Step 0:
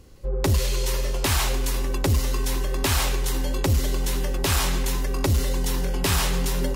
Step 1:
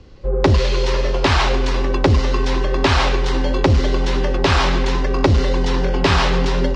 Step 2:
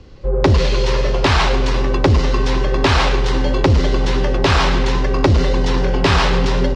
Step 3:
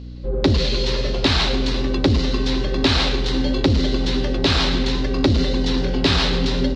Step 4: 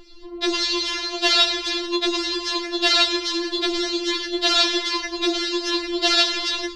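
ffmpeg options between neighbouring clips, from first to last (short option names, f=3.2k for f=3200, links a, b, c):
-filter_complex "[0:a]lowpass=f=5k:w=0.5412,lowpass=f=5k:w=1.3066,acrossover=split=240|1800[a][b][c];[b]dynaudnorm=f=100:g=5:m=5dB[d];[a][d][c]amix=inputs=3:normalize=0,volume=6dB"
-filter_complex "[0:a]asplit=2[a][b];[b]asoftclip=type=tanh:threshold=-14dB,volume=-7dB[c];[a][c]amix=inputs=2:normalize=0,asplit=4[d][e][f][g];[e]adelay=111,afreqshift=70,volume=-16dB[h];[f]adelay=222,afreqshift=140,volume=-24.9dB[i];[g]adelay=333,afreqshift=210,volume=-33.7dB[j];[d][h][i][j]amix=inputs=4:normalize=0,volume=-1dB"
-af "equalizer=f=250:t=o:w=0.67:g=9,equalizer=f=1k:t=o:w=0.67:g=-5,equalizer=f=4k:t=o:w=0.67:g=11,aeval=exprs='val(0)+0.0447*(sin(2*PI*60*n/s)+sin(2*PI*2*60*n/s)/2+sin(2*PI*3*60*n/s)/3+sin(2*PI*4*60*n/s)/4+sin(2*PI*5*60*n/s)/5)':c=same,volume=-6dB"
-filter_complex "[0:a]highshelf=f=3.8k:g=6.5,acrossover=split=320[a][b];[a]asoftclip=type=tanh:threshold=-19dB[c];[c][b]amix=inputs=2:normalize=0,afftfilt=real='re*4*eq(mod(b,16),0)':imag='im*4*eq(mod(b,16),0)':win_size=2048:overlap=0.75,volume=3dB"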